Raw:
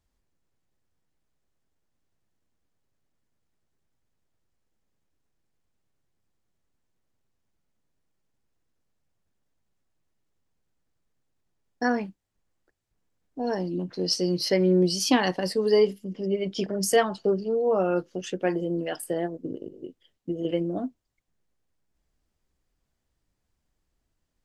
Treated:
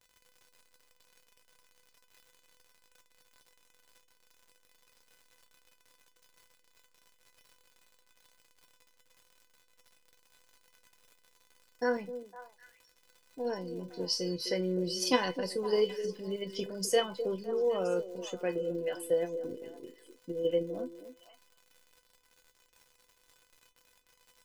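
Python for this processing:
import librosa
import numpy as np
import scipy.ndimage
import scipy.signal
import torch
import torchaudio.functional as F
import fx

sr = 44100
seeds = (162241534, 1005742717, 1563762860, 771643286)

p1 = fx.level_steps(x, sr, step_db=9)
p2 = x + (p1 * 10.0 ** (1.5 / 20.0))
p3 = fx.dmg_crackle(p2, sr, seeds[0], per_s=120.0, level_db=-34.0)
p4 = fx.comb_fb(p3, sr, f0_hz=500.0, decay_s=0.16, harmonics='all', damping=0.0, mix_pct=90)
p5 = fx.echo_stepped(p4, sr, ms=255, hz=360.0, octaves=1.4, feedback_pct=70, wet_db=-8.0)
y = p5 * 10.0 ** (1.5 / 20.0)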